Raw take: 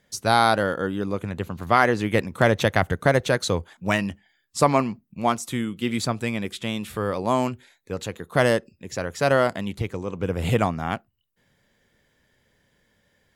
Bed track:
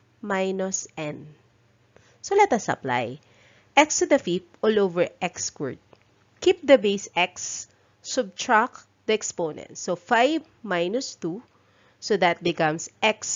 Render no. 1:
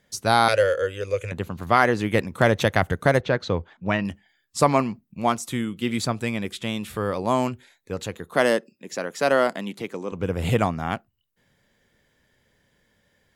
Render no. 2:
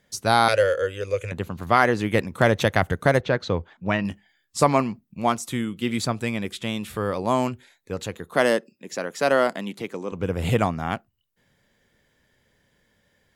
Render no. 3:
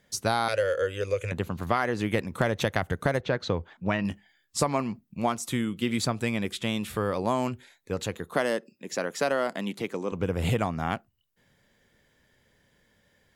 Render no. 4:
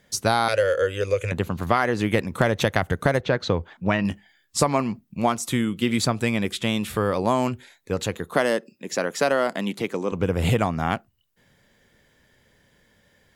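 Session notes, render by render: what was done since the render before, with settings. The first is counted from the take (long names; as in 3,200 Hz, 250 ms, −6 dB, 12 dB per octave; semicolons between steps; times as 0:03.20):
0:00.48–0:01.32: drawn EQ curve 110 Hz 0 dB, 160 Hz −21 dB, 290 Hz −17 dB, 530 Hz +9 dB, 790 Hz −15 dB, 1,300 Hz −4 dB, 2,500 Hz +10 dB, 3,800 Hz −2 dB, 6,500 Hz +11 dB, 14,000 Hz −4 dB; 0:03.21–0:04.05: high-frequency loss of the air 220 metres; 0:08.34–0:10.12: high-pass filter 190 Hz 24 dB per octave
0:04.02–0:04.64: double-tracking delay 19 ms −10 dB
downward compressor 5 to 1, threshold −22 dBFS, peak gain reduction 10 dB
level +5 dB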